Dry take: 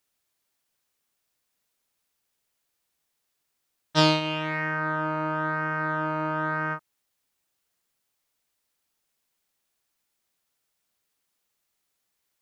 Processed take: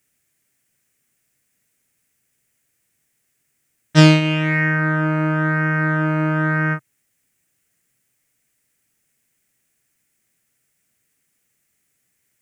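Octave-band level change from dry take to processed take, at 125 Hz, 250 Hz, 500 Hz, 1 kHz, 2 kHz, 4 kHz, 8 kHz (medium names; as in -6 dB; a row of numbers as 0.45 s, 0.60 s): +15.5 dB, +12.0 dB, +5.5 dB, +2.0 dB, +9.0 dB, +3.5 dB, +8.5 dB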